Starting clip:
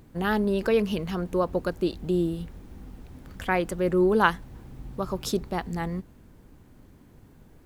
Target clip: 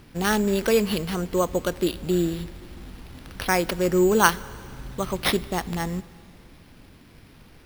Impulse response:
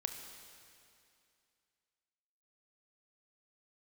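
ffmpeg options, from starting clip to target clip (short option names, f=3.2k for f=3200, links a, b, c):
-filter_complex "[0:a]crystalizer=i=2.5:c=0,acrusher=samples=6:mix=1:aa=0.000001,asplit=2[a][b];[1:a]atrim=start_sample=2205,highshelf=f=12k:g=5.5[c];[b][c]afir=irnorm=-1:irlink=0,volume=-11dB[d];[a][d]amix=inputs=2:normalize=0"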